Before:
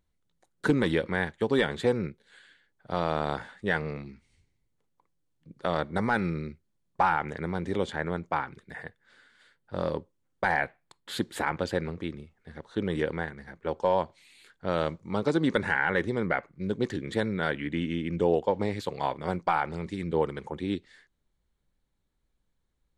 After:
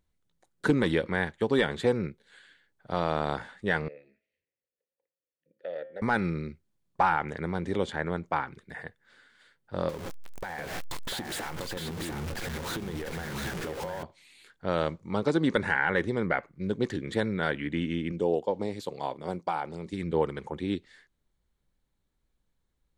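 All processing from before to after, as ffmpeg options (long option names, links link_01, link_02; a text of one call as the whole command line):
ffmpeg -i in.wav -filter_complex "[0:a]asettb=1/sr,asplit=3[link_01][link_02][link_03];[link_01]atrim=end=3.884[link_04];[link_02]atrim=start=3.88:end=6.02,asetpts=PTS-STARTPTS,afade=type=in:duration=0.004:curve=qsin,afade=type=out:start_time=2.136:duration=0.004:curve=qsin,asplit=3[link_05][link_06][link_07];[link_05]bandpass=frequency=530:width_type=q:width=8,volume=0dB[link_08];[link_06]bandpass=frequency=1840:width_type=q:width=8,volume=-6dB[link_09];[link_07]bandpass=frequency=2480:width_type=q:width=8,volume=-9dB[link_10];[link_08][link_09][link_10]amix=inputs=3:normalize=0,bandreject=frequency=106.7:width_type=h:width=4,bandreject=frequency=213.4:width_type=h:width=4,bandreject=frequency=320.1:width_type=h:width=4,bandreject=frequency=426.8:width_type=h:width=4,bandreject=frequency=533.5:width_type=h:width=4,bandreject=frequency=640.2:width_type=h:width=4,bandreject=frequency=746.9:width_type=h:width=4,bandreject=frequency=853.6:width_type=h:width=4,bandreject=frequency=960.3:width_type=h:width=4,bandreject=frequency=1067:width_type=h:width=4,bandreject=frequency=1173.7:width_type=h:width=4,bandreject=frequency=1280.4:width_type=h:width=4,bandreject=frequency=1387.1:width_type=h:width=4,bandreject=frequency=1493.8:width_type=h:width=4,bandreject=frequency=1600.5:width_type=h:width=4,bandreject=frequency=1707.2:width_type=h:width=4,bandreject=frequency=1813.9:width_type=h:width=4,bandreject=frequency=1920.6:width_type=h:width=4,bandreject=frequency=2027.3:width_type=h:width=4,bandreject=frequency=2134:width_type=h:width=4,bandreject=frequency=2240.7:width_type=h:width=4,bandreject=frequency=2347.4:width_type=h:width=4,bandreject=frequency=2454.1:width_type=h:width=4,bandreject=frequency=2560.8:width_type=h:width=4,bandreject=frequency=2667.5:width_type=h:width=4,bandreject=frequency=2774.2:width_type=h:width=4,bandreject=frequency=2880.9:width_type=h:width=4,bandreject=frequency=2987.6:width_type=h:width=4,bandreject=frequency=3094.3:width_type=h:width=4,bandreject=frequency=3201:width_type=h:width=4,bandreject=frequency=3307.7:width_type=h:width=4,bandreject=frequency=3414.4:width_type=h:width=4[link_11];[link_03]atrim=start=6.016[link_12];[link_04][link_11]acrossfade=duration=0.004:curve1=hsin:curve2=qsin[link_13];[link_13][link_12]acrossfade=duration=0.004:curve1=qsin:curve2=hsin,asettb=1/sr,asplit=3[link_14][link_15][link_16];[link_14]atrim=end=9.894[link_17];[link_15]atrim=start=9.89:end=14.03,asetpts=PTS-STARTPTS,afade=type=in:duration=0.004:curve=qsin,afade=type=out:start_time=4.136:duration=0.004:curve=qsin,aeval=exprs='val(0)+0.5*0.0335*sgn(val(0))':channel_layout=same,acompressor=threshold=-33dB:ratio=8:attack=3.2:release=140:knee=1:detection=peak,aecho=1:1:696:0.562,atrim=end_sample=182574[link_18];[link_16]atrim=start=14.026[link_19];[link_17][link_18]acrossfade=duration=0.004:curve1=hsin:curve2=qsin[link_20];[link_20][link_19]acrossfade=duration=0.004:curve1=qsin:curve2=hsin,asettb=1/sr,asplit=3[link_21][link_22][link_23];[link_21]atrim=end=18.124[link_24];[link_22]atrim=start=18.12:end=19.93,asetpts=PTS-STARTPTS,afade=type=in:duration=0.004:curve=qsin,afade=type=out:start_time=1.806:duration=0.004:curve=qsin,highpass=frequency=220:poles=1,equalizer=frequency=1700:width_type=o:width=1.7:gain=-9.5[link_25];[link_23]atrim=start=19.926[link_26];[link_24][link_25]acrossfade=duration=0.004:curve1=hsin:curve2=qsin[link_27];[link_27][link_26]acrossfade=duration=0.004:curve1=qsin:curve2=hsin" out.wav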